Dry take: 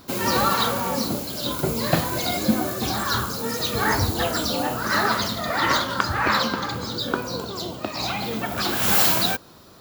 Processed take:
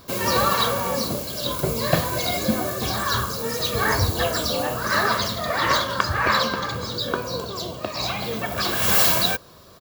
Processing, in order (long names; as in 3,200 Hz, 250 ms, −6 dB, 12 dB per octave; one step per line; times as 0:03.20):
comb filter 1.8 ms, depth 41%